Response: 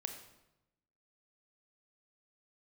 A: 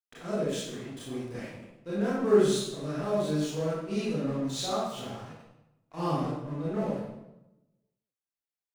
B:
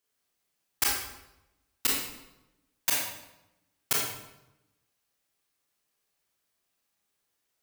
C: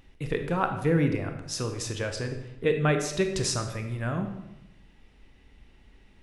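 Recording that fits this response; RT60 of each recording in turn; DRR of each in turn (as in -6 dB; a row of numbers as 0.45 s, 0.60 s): C; 0.95 s, 0.95 s, 0.95 s; -10.0 dB, -4.5 dB, 5.0 dB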